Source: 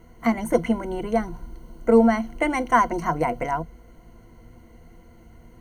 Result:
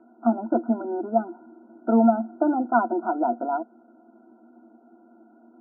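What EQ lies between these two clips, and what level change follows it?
linear-phase brick-wall band-pass 210–1,500 Hz
high-frequency loss of the air 390 metres
phaser with its sweep stopped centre 720 Hz, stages 8
+4.5 dB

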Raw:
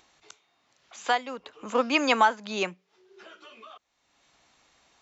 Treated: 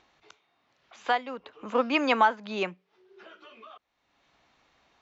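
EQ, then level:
high-frequency loss of the air 170 metres
0.0 dB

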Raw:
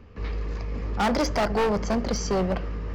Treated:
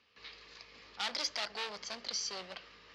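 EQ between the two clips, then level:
resonant band-pass 4,000 Hz, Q 2.1
+2.0 dB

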